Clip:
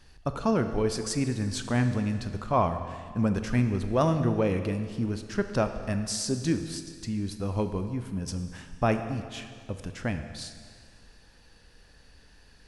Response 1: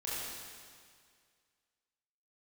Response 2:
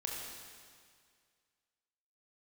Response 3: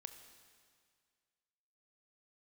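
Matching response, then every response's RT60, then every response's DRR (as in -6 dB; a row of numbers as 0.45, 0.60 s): 3; 2.0, 2.0, 2.0 s; -9.0, -2.0, 7.5 dB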